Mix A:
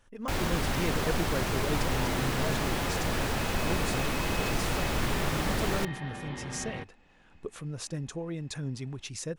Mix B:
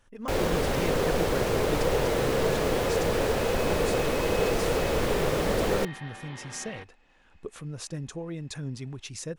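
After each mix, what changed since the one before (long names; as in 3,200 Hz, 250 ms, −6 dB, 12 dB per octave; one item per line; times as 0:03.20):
first sound: add parametric band 480 Hz +14 dB 0.71 octaves
second sound: add high-pass filter 720 Hz 6 dB per octave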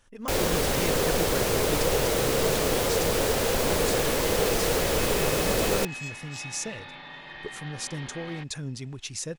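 speech: add high-shelf EQ 8,300 Hz −8.5 dB
second sound: entry +1.60 s
master: add high-shelf EQ 3,900 Hz +11.5 dB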